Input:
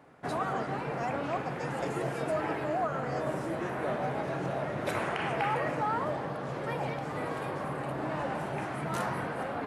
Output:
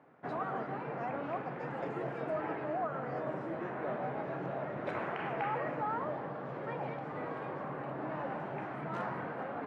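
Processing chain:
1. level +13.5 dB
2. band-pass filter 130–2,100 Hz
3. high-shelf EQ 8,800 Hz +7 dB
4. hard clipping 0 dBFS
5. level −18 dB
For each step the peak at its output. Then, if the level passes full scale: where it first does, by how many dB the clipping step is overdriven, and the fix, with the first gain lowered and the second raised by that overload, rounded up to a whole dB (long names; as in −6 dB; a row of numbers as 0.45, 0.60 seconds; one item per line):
−3.5, −5.5, −5.0, −5.0, −23.0 dBFS
no step passes full scale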